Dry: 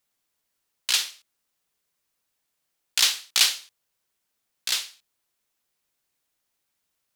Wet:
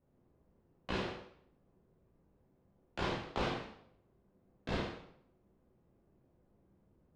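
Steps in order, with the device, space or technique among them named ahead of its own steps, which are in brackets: television next door (compressor 4:1, threshold -24 dBFS, peak gain reduction 9.5 dB; LPF 320 Hz 12 dB/oct; reverb RT60 0.65 s, pre-delay 11 ms, DRR -7 dB); gain +18 dB

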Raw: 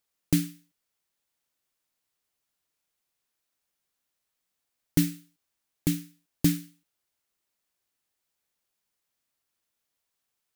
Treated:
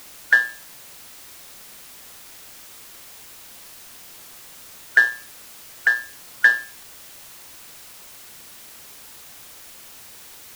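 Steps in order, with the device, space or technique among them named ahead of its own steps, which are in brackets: split-band scrambled radio (four-band scrambler; BPF 350–3000 Hz; white noise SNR 15 dB); gain +8.5 dB

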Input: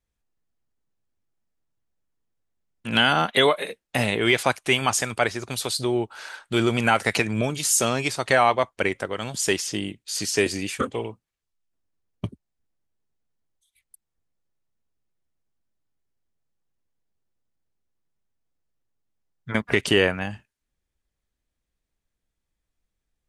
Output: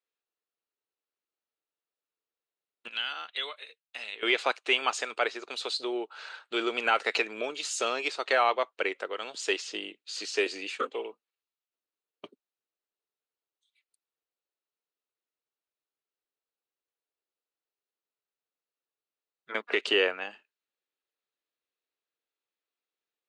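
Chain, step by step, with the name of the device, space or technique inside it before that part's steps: phone speaker on a table (speaker cabinet 340–6800 Hz, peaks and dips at 450 Hz +4 dB, 1300 Hz +5 dB, 2700 Hz +6 dB, 4000 Hz +6 dB, 5800 Hz -5 dB); 2.88–4.23 passive tone stack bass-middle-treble 5-5-5; gain -7.5 dB

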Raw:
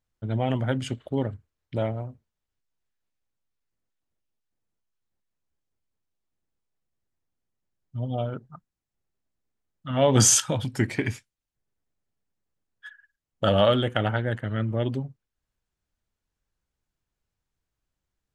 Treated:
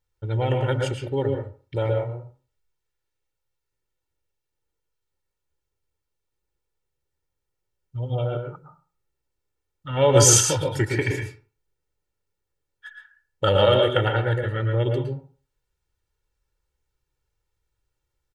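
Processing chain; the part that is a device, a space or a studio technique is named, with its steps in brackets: microphone above a desk (comb 2.2 ms, depth 78%; reverb RT60 0.40 s, pre-delay 0.108 s, DRR 3 dB)

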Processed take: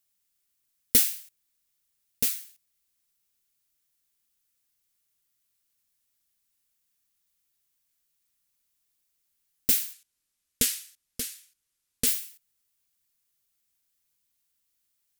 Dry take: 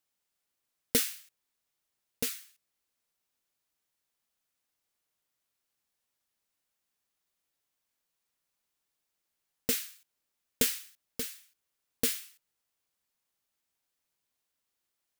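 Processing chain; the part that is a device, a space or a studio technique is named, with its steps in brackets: smiley-face EQ (low shelf 82 Hz +7 dB; bell 660 Hz -8.5 dB 1.9 oct; high shelf 6700 Hz +8.5 dB); 9.93–12.07 LPF 12000 Hz 12 dB/oct; gain +1.5 dB

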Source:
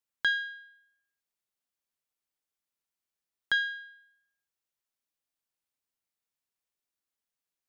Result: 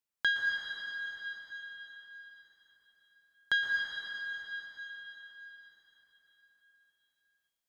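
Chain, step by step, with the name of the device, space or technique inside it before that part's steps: cathedral (reverb RT60 4.6 s, pre-delay 0.112 s, DRR -1 dB); gain -2 dB

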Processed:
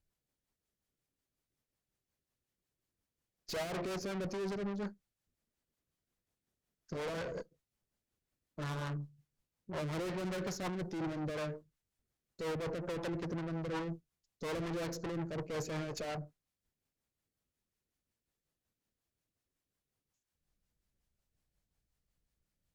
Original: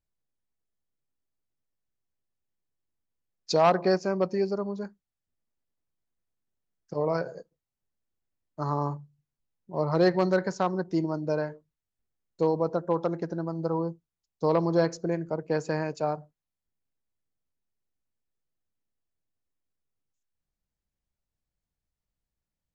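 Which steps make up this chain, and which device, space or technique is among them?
overdriven rotary cabinet (tube stage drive 42 dB, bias 0.45; rotary speaker horn 5.5 Hz); gain +7.5 dB

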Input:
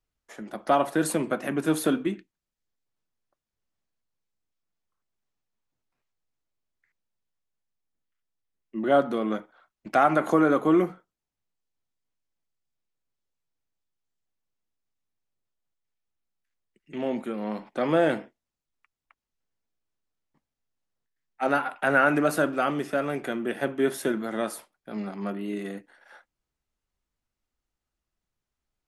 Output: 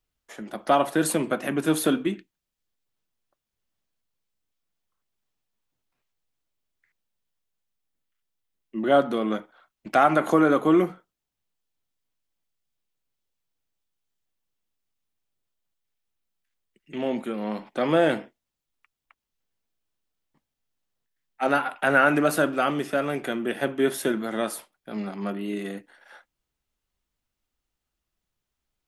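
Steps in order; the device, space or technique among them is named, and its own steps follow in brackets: presence and air boost (bell 3200 Hz +3.5 dB 0.77 oct; high shelf 11000 Hz +5.5 dB); gain +1.5 dB

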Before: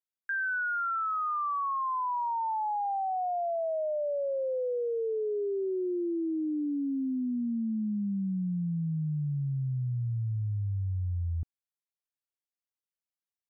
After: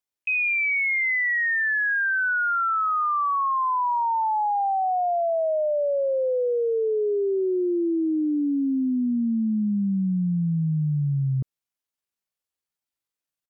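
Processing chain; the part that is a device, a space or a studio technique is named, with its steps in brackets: chipmunk voice (pitch shift +8 st); gain +7.5 dB

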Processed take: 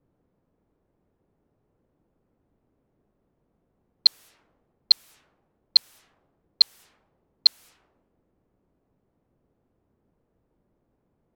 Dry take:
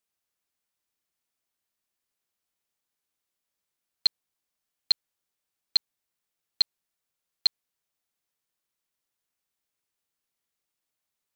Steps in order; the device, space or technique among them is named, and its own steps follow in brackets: cassette deck with a dynamic noise filter (white noise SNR 23 dB; low-pass opened by the level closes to 330 Hz, open at -30 dBFS); gain +5.5 dB

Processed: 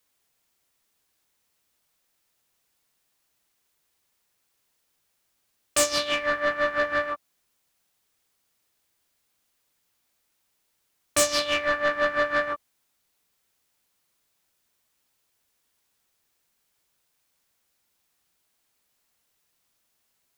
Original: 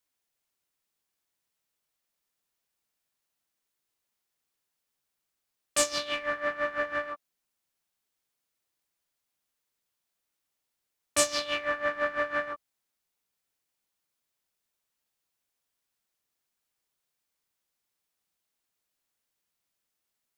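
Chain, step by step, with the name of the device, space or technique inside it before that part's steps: open-reel tape (soft clip -22.5 dBFS, distortion -12 dB; bell 71 Hz +4.5 dB; white noise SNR 44 dB); gain +7.5 dB

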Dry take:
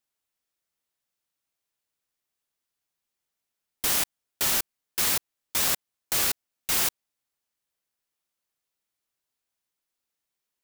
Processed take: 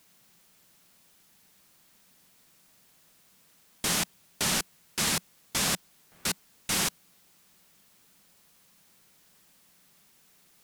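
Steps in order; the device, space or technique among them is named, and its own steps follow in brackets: worn cassette (LPF 9900 Hz 12 dB/oct; wow and flutter; level dips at 5.98, 0.268 s -28 dB; white noise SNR 25 dB); bell 180 Hz +11.5 dB 0.73 oct

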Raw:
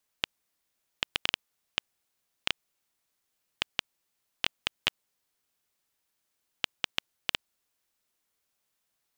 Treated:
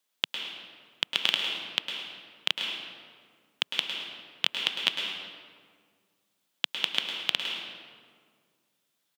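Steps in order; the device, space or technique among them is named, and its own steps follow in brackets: PA in a hall (HPF 160 Hz 24 dB/oct; bell 3400 Hz +6.5 dB 0.47 oct; echo 0.104 s -12 dB; reverb RT60 1.9 s, pre-delay 0.106 s, DRR 2.5 dB)

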